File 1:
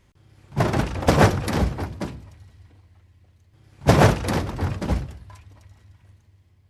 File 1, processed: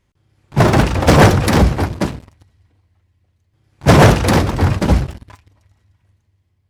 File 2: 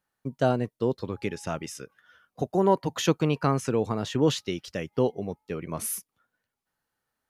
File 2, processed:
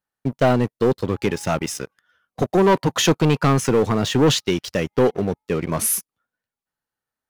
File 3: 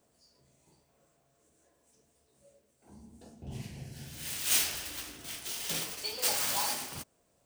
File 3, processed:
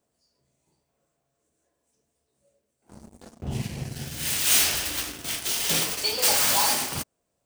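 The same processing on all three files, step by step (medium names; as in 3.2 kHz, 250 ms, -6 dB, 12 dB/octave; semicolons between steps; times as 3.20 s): waveshaping leveller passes 3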